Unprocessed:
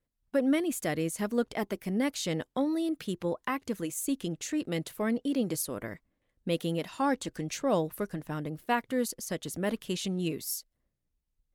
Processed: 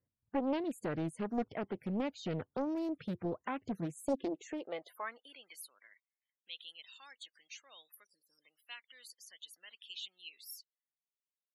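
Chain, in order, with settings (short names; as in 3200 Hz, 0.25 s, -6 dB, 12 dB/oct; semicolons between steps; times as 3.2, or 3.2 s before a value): spectral gain 8.04–8.42, 600–4100 Hz -24 dB; high shelf 2700 Hz -6 dB; loudest bins only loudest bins 64; in parallel at -3 dB: compressor, threshold -36 dBFS, peak gain reduction 13.5 dB; on the sum: high-pass sweep 98 Hz -> 3300 Hz, 3.62–5.72; dynamic EQ 6800 Hz, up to -6 dB, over -56 dBFS, Q 1.4; Doppler distortion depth 0.84 ms; gain -8.5 dB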